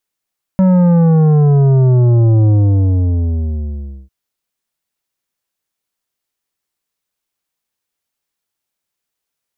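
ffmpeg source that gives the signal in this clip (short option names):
-f lavfi -i "aevalsrc='0.398*clip((3.5-t)/1.61,0,1)*tanh(3.16*sin(2*PI*190*3.5/log(65/190)*(exp(log(65/190)*t/3.5)-1)))/tanh(3.16)':d=3.5:s=44100"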